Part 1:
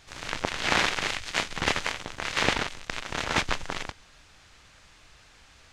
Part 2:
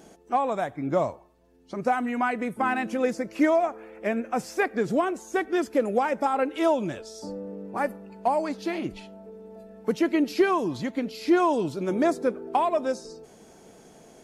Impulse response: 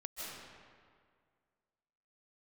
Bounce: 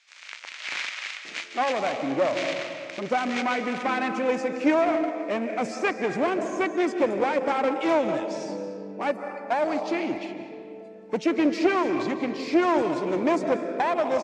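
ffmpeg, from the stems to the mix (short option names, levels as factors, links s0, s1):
-filter_complex "[0:a]highpass=1500,volume=0.335,asplit=2[s0][s1];[s1]volume=0.708[s2];[1:a]adelay=1250,volume=0.794,asplit=2[s3][s4];[s4]volume=0.631[s5];[2:a]atrim=start_sample=2205[s6];[s2][s5]amix=inputs=2:normalize=0[s7];[s7][s6]afir=irnorm=-1:irlink=0[s8];[s0][s3][s8]amix=inputs=3:normalize=0,aeval=exprs='clip(val(0),-1,0.0473)':c=same,highpass=170,equalizer=f=310:t=q:w=4:g=4,equalizer=f=560:t=q:w=4:g=4,equalizer=f=2300:t=q:w=4:g=6,lowpass=f=7600:w=0.5412,lowpass=f=7600:w=1.3066"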